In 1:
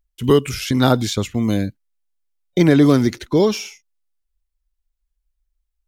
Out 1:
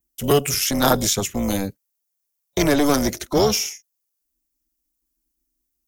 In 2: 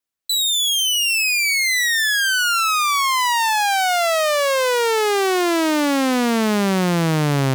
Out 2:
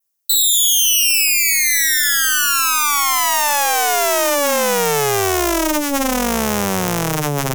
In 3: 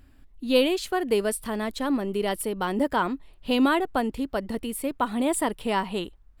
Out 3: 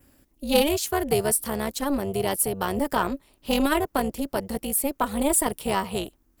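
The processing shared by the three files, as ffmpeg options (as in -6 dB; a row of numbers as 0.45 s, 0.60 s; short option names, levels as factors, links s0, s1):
-filter_complex "[0:a]highpass=f=150:p=1,adynamicequalizer=threshold=0.00891:dfrequency=4500:dqfactor=3.1:tfrequency=4500:tqfactor=3.1:attack=5:release=100:ratio=0.375:range=2.5:mode=cutabove:tftype=bell,aeval=exprs='0.708*(cos(1*acos(clip(val(0)/0.708,-1,1)))-cos(1*PI/2))+0.0398*(cos(4*acos(clip(val(0)/0.708,-1,1)))-cos(4*PI/2))':c=same,acrossover=split=470[s0][s1];[s0]asoftclip=type=tanh:threshold=0.0794[s2];[s2][s1]amix=inputs=2:normalize=0,equalizer=f=1600:t=o:w=2.2:g=-3,tremolo=f=290:d=0.788,aexciter=amount=1.4:drive=9.3:freq=5200,volume=2"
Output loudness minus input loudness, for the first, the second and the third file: -3.0 LU, +3.0 LU, +1.5 LU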